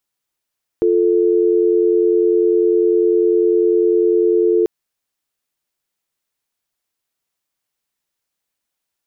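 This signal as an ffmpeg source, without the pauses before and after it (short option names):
-f lavfi -i "aevalsrc='0.2*(sin(2*PI*350*t)+sin(2*PI*440*t))':d=3.84:s=44100"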